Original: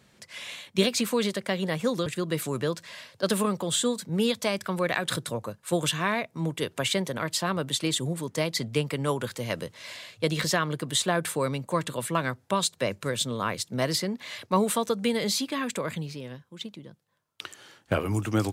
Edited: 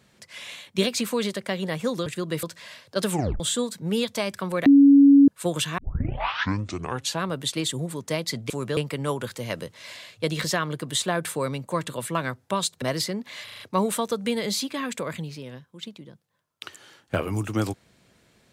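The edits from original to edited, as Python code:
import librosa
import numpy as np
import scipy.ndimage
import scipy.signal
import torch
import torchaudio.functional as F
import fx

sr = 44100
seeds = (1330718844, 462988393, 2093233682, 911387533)

y = fx.edit(x, sr, fx.move(start_s=2.43, length_s=0.27, to_s=8.77),
    fx.tape_stop(start_s=3.37, length_s=0.3),
    fx.bleep(start_s=4.93, length_s=0.62, hz=280.0, db=-9.5),
    fx.tape_start(start_s=6.05, length_s=1.47),
    fx.cut(start_s=12.82, length_s=0.94),
    fx.stutter(start_s=14.38, slice_s=0.04, count=5), tone=tone)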